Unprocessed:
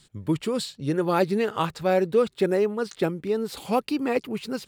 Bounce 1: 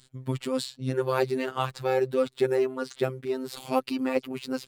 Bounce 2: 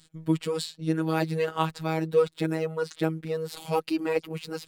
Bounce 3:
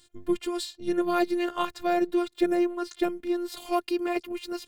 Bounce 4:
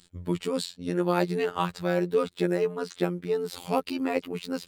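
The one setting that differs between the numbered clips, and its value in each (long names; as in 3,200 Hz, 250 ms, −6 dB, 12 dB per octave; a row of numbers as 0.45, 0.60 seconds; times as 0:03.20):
phases set to zero, frequency: 130, 160, 350, 88 Hertz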